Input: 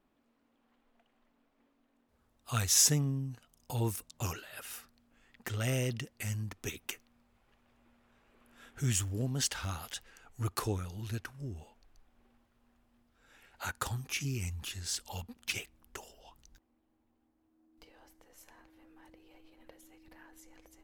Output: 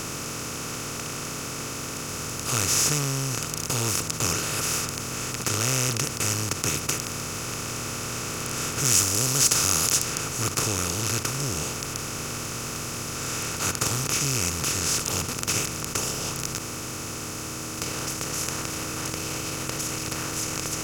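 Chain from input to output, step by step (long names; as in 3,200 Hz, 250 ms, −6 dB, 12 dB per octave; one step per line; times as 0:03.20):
compressor on every frequency bin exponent 0.2
0:08.85–0:10.05: bass and treble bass −1 dB, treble +6 dB
level −1.5 dB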